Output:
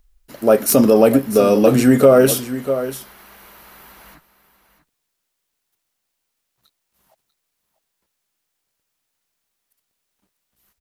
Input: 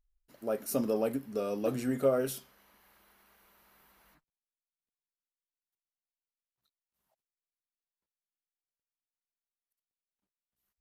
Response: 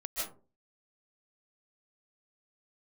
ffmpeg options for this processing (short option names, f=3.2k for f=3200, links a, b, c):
-filter_complex "[0:a]acrossover=split=750|2800[a][b][c];[c]aeval=exprs='(mod(20*val(0)+1,2)-1)/20':c=same[d];[a][b][d]amix=inputs=3:normalize=0,aecho=1:1:643:0.211,alimiter=level_in=21dB:limit=-1dB:release=50:level=0:latency=1,volume=-1dB"